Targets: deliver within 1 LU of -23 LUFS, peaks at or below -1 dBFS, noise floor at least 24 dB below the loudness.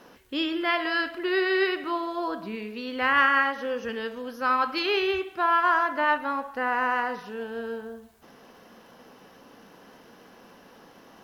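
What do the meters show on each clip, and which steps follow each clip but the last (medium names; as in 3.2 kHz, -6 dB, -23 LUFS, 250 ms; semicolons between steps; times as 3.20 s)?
tick rate 36 per s; loudness -26.0 LUFS; peak level -9.0 dBFS; loudness target -23.0 LUFS
-> de-click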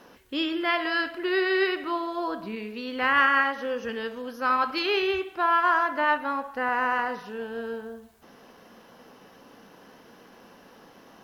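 tick rate 0.27 per s; loudness -26.0 LUFS; peak level -9.0 dBFS; loudness target -23.0 LUFS
-> trim +3 dB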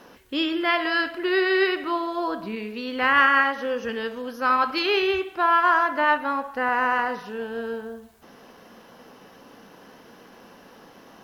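loudness -23.0 LUFS; peak level -6.0 dBFS; noise floor -50 dBFS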